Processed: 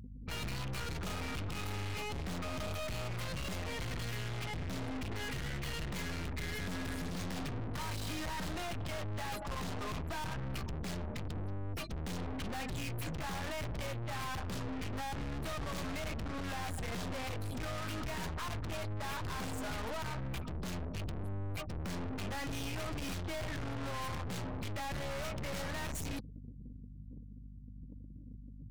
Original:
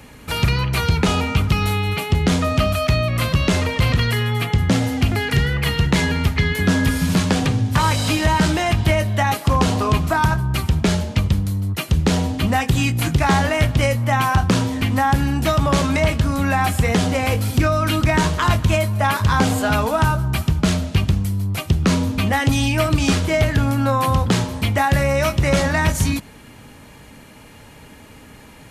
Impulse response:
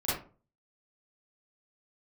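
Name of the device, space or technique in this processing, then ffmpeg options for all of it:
valve amplifier with mains hum: -af "afftfilt=real='re*gte(hypot(re,im),0.0398)':imag='im*gte(hypot(re,im),0.0398)':win_size=1024:overlap=0.75,aeval=exprs='(tanh(63.1*val(0)+0.65)-tanh(0.65))/63.1':c=same,aeval=exprs='val(0)+0.00501*(sin(2*PI*50*n/s)+sin(2*PI*2*50*n/s)/2+sin(2*PI*3*50*n/s)/3+sin(2*PI*4*50*n/s)/4+sin(2*PI*5*50*n/s)/5)':c=same,volume=0.708"

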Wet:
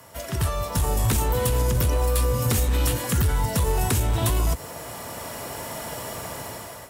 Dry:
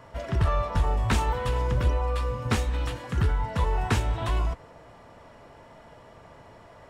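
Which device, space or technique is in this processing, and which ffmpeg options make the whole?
FM broadcast chain: -filter_complex "[0:a]highpass=62,dynaudnorm=f=360:g=5:m=6.31,acrossover=split=84|530|3500[s0][s1][s2][s3];[s0]acompressor=threshold=0.126:ratio=4[s4];[s1]acompressor=threshold=0.112:ratio=4[s5];[s2]acompressor=threshold=0.0224:ratio=4[s6];[s3]acompressor=threshold=0.00562:ratio=4[s7];[s4][s5][s6][s7]amix=inputs=4:normalize=0,aemphasis=mode=production:type=50fm,alimiter=limit=0.211:level=0:latency=1:release=30,asoftclip=type=hard:threshold=0.158,lowpass=f=15000:w=0.5412,lowpass=f=15000:w=1.3066,aemphasis=mode=production:type=50fm"

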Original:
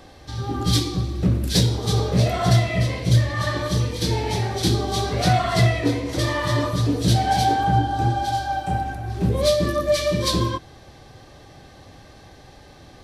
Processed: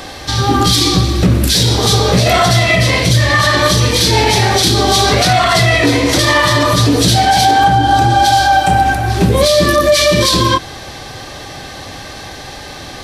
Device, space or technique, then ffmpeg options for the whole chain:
mastering chain: -af "equalizer=f=260:t=o:w=0.77:g=1.5,acompressor=threshold=0.1:ratio=2,tiltshelf=f=720:g=-5,alimiter=level_in=7.94:limit=0.891:release=50:level=0:latency=1,volume=0.891"

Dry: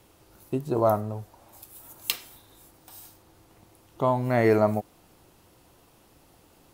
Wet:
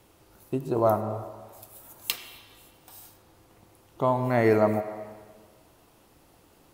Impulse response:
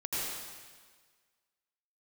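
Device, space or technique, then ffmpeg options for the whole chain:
filtered reverb send: -filter_complex "[0:a]asplit=2[s0][s1];[s1]highpass=f=280:p=1,lowpass=3300[s2];[1:a]atrim=start_sample=2205[s3];[s2][s3]afir=irnorm=-1:irlink=0,volume=0.224[s4];[s0][s4]amix=inputs=2:normalize=0,volume=0.841"

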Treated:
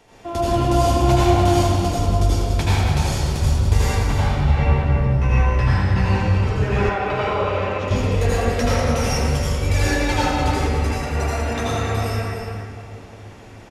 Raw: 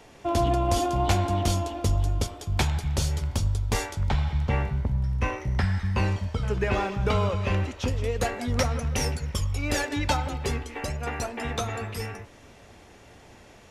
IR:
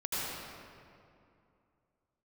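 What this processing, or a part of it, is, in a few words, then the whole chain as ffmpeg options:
cave: -filter_complex "[0:a]aecho=1:1:294:0.376[s0];[1:a]atrim=start_sample=2205[s1];[s0][s1]afir=irnorm=-1:irlink=0,asettb=1/sr,asplit=3[s2][s3][s4];[s2]atrim=end=6.894[s5];[s3]atrim=start=6.89:end=7.91,asetpts=PTS-STARTPTS,afade=t=in:d=0.004:c=qsin,afade=t=out:st=1.016:d=0.004:c=qsin,bass=f=250:g=-12,treble=f=4000:g=-8[s6];[s4]atrim=start=7.906[s7];[s5][s6]acrossfade=d=0.004:c1=hsin:c2=qsin[s8];[s8][s7]acrossfade=d=0.004:c1=qsin:c2=hsin"

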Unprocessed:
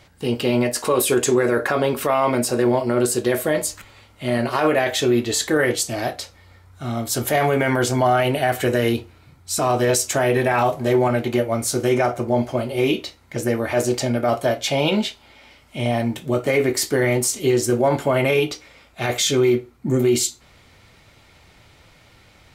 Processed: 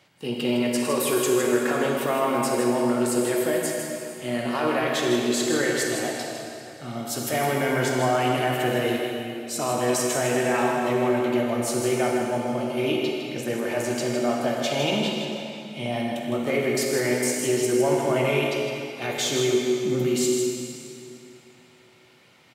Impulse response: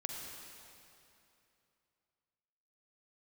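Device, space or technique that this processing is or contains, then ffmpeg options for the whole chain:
PA in a hall: -filter_complex "[0:a]highpass=f=130:w=0.5412,highpass=f=130:w=1.3066,equalizer=f=2800:t=o:w=0.29:g=4,aecho=1:1:158:0.422[s0];[1:a]atrim=start_sample=2205[s1];[s0][s1]afir=irnorm=-1:irlink=0,volume=0.562"

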